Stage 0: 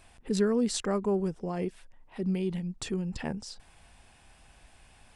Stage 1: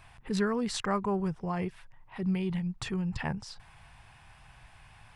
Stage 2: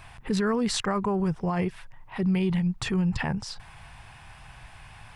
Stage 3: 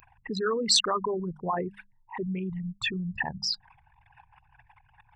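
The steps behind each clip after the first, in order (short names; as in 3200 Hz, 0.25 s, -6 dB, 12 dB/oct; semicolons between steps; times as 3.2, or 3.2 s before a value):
graphic EQ 125/250/500/1000/2000/8000 Hz +11/-7/-5/+7/+4/-6 dB
limiter -26 dBFS, peak gain reduction 7.5 dB; gain +7.5 dB
formant sharpening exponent 3; RIAA curve recording; notches 50/100/150/200 Hz; gain +1 dB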